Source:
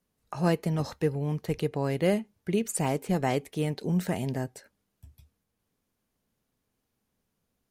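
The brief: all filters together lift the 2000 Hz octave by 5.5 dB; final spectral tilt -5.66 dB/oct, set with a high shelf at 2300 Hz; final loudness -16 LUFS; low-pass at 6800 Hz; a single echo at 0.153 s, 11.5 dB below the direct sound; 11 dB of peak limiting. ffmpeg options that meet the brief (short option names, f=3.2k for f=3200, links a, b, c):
-af "lowpass=6.8k,equalizer=f=2k:t=o:g=4,highshelf=f=2.3k:g=5,alimiter=limit=-23.5dB:level=0:latency=1,aecho=1:1:153:0.266,volume=17.5dB"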